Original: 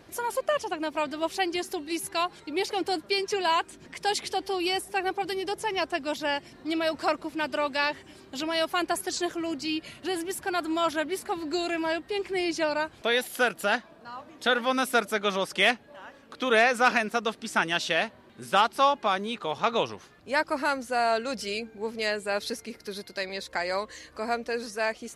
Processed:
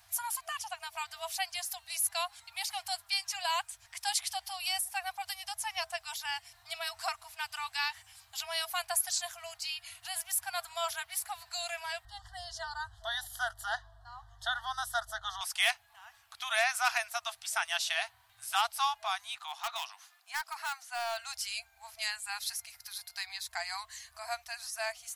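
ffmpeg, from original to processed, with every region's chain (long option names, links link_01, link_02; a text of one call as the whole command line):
ffmpeg -i in.wav -filter_complex "[0:a]asettb=1/sr,asplit=3[link_01][link_02][link_03];[link_01]atrim=end=12.054[link_04];[link_02]atrim=start=12.05:end=15.41,asetpts=PTS-STARTPTS,afade=type=in:duration=0.004:curve=qsin,afade=type=out:start_time=3.356:duration=0.004:curve=qsin,aemphasis=mode=reproduction:type=bsi,aeval=exprs='val(0)+0.00447*(sin(2*PI*50*n/s)+sin(2*PI*2*50*n/s)/2+sin(2*PI*3*50*n/s)/3+sin(2*PI*4*50*n/s)/4+sin(2*PI*5*50*n/s)/5)':channel_layout=same,asuperstop=centerf=2400:order=12:qfactor=2.3[link_05];[link_03]atrim=start=15.406[link_06];[link_04][link_05]acrossfade=duration=0.004:curve1=hsin:curve2=qsin[link_07];[link_07][link_06]acrossfade=duration=0.004:curve1=qsin:curve2=hsin,asettb=1/sr,asplit=3[link_08][link_09][link_10];[link_08]atrim=end=19.354[link_11];[link_09]atrim=start=19.35:end=21.18,asetpts=PTS-STARTPTS,afade=type=in:duration=0.004:curve=qsin,afade=type=out:start_time=1.826:duration=0.004:curve=qsin,acrossover=split=5100[link_12][link_13];[link_13]acompressor=threshold=-57dB:ratio=4:attack=1:release=60[link_14];[link_12][link_14]amix=inputs=2:normalize=0,highpass=frequency=670:width=0.5412,highpass=frequency=670:width=1.3066,asoftclip=type=hard:threshold=-22.5dB[link_15];[link_10]atrim=start=21.176[link_16];[link_11][link_15]acrossfade=duration=0.004:curve1=hsin:curve2=qsin[link_17];[link_17][link_16]acrossfade=duration=0.004:curve1=qsin:curve2=hsin,aemphasis=mode=production:type=75fm,afftfilt=real='re*(1-between(b*sr/4096,110,650))':imag='im*(1-between(b*sr/4096,110,650))':win_size=4096:overlap=0.75,volume=-8dB" out.wav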